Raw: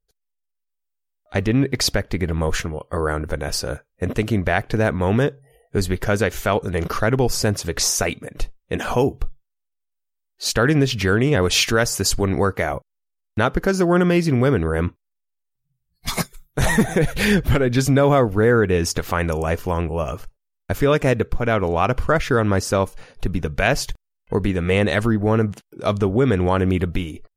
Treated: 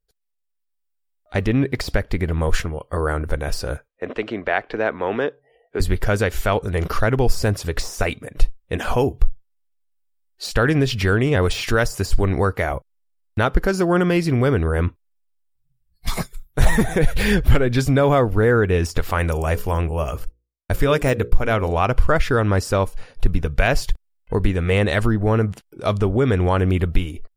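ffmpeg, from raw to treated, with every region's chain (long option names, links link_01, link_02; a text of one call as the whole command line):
ffmpeg -i in.wav -filter_complex "[0:a]asettb=1/sr,asplit=3[link_01][link_02][link_03];[link_01]atrim=end=3.884[link_04];[link_02]atrim=start=3.88:end=5.8,asetpts=PTS-STARTPTS,afade=type=in:duration=0.004:curve=qsin,afade=type=out:start_time=1.916:duration=0.004:curve=qsin,lowpass=frequency=9100:width=0.5412,lowpass=frequency=9100:width=1.3066,acrossover=split=250 4100:gain=0.0708 1 0.0891[link_05][link_06][link_07];[link_05][link_06][link_07]amix=inputs=3:normalize=0[link_08];[link_03]atrim=start=5.796[link_09];[link_04][link_08]acrossfade=duration=0.004:curve1=hsin:curve2=qsin[link_10];[link_10][link_09]acrossfade=duration=0.004:curve1=qsin:curve2=hsin,asettb=1/sr,asplit=3[link_11][link_12][link_13];[link_11]atrim=end=19.114[link_14];[link_12]atrim=start=19.11:end=21.79,asetpts=PTS-STARTPTS,afade=type=in:duration=0.004:curve=qsin,afade=type=out:start_time=2.676:duration=0.004:curve=qsin,agate=range=-33dB:threshold=-34dB:ratio=3:release=100:detection=peak,highshelf=frequency=7300:gain=8,bandreject=frequency=60:width_type=h:width=6,bandreject=frequency=120:width_type=h:width=6,bandreject=frequency=180:width_type=h:width=6,bandreject=frequency=240:width_type=h:width=6,bandreject=frequency=300:width_type=h:width=6,bandreject=frequency=360:width_type=h:width=6,bandreject=frequency=420:width_type=h:width=6,bandreject=frequency=480:width_type=h:width=6,bandreject=frequency=540:width_type=h:width=6[link_15];[link_13]atrim=start=21.786[link_16];[link_14][link_15]acrossfade=duration=0.004:curve1=hsin:curve2=qsin[link_17];[link_17][link_16]acrossfade=duration=0.004:curve1=qsin:curve2=hsin,bandreject=frequency=6300:width=11,deesser=0.5,asubboost=boost=2.5:cutoff=90" out.wav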